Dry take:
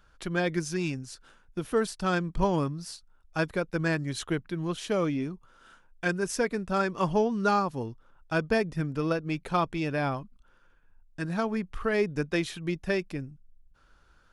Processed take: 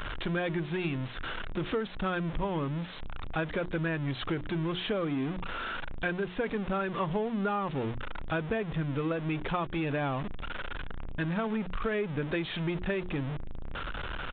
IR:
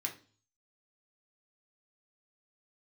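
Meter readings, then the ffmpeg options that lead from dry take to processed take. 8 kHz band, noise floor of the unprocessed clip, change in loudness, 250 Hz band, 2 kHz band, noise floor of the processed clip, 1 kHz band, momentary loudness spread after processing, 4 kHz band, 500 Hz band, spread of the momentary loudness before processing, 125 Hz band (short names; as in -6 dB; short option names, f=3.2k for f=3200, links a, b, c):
under -35 dB, -62 dBFS, -3.5 dB, -2.0 dB, -2.0 dB, -39 dBFS, -3.5 dB, 8 LU, 0.0 dB, -4.0 dB, 12 LU, -0.5 dB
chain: -af "aeval=exprs='val(0)+0.5*0.0335*sgn(val(0))':c=same,bandreject=f=60:t=h:w=6,bandreject=f=120:t=h:w=6,bandreject=f=180:t=h:w=6,bandreject=f=240:t=h:w=6,bandreject=f=300:t=h:w=6,bandreject=f=360:t=h:w=6,acompressor=threshold=-28dB:ratio=6,aresample=8000,aeval=exprs='val(0)*gte(abs(val(0)),0.00376)':c=same,aresample=44100"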